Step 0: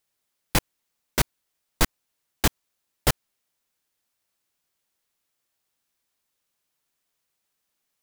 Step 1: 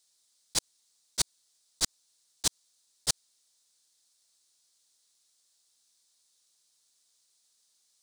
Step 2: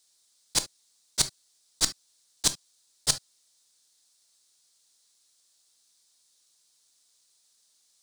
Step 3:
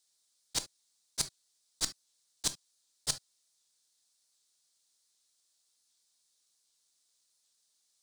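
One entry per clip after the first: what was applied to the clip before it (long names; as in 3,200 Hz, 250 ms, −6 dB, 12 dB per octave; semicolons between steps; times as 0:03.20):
low-shelf EQ 210 Hz −6.5 dB; volume swells 105 ms; flat-topped bell 5,900 Hz +15.5 dB; level −2.5 dB
convolution reverb, pre-delay 7 ms, DRR 10.5 dB; level +3.5 dB
wow of a warped record 78 rpm, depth 100 cents; level −8 dB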